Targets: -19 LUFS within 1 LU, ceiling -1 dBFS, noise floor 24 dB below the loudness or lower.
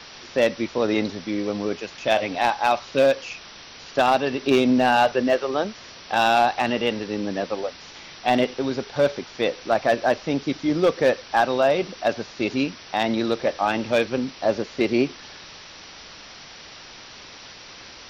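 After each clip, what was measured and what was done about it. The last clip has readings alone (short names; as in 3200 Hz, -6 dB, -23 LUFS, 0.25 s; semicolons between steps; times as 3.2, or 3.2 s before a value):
clipped 0.3%; flat tops at -10.5 dBFS; noise floor -43 dBFS; noise floor target -47 dBFS; loudness -23.0 LUFS; peak -10.5 dBFS; loudness target -19.0 LUFS
-> clip repair -10.5 dBFS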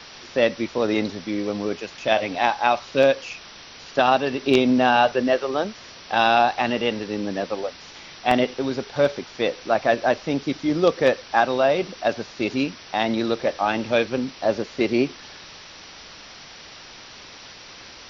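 clipped 0.0%; noise floor -43 dBFS; noise floor target -47 dBFS
-> denoiser 6 dB, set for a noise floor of -43 dBFS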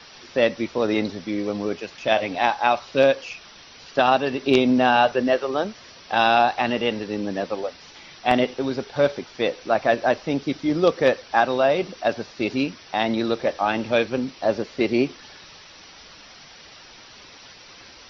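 noise floor -46 dBFS; noise floor target -47 dBFS
-> denoiser 6 dB, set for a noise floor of -46 dBFS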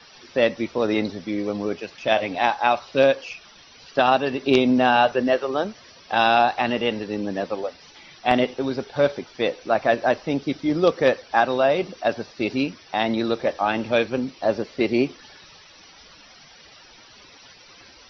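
noise floor -49 dBFS; loudness -22.5 LUFS; peak -1.5 dBFS; loudness target -19.0 LUFS
-> gain +3.5 dB; limiter -1 dBFS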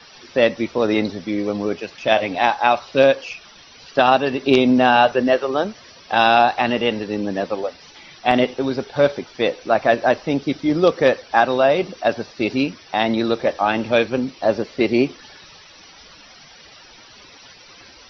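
loudness -19.0 LUFS; peak -1.0 dBFS; noise floor -46 dBFS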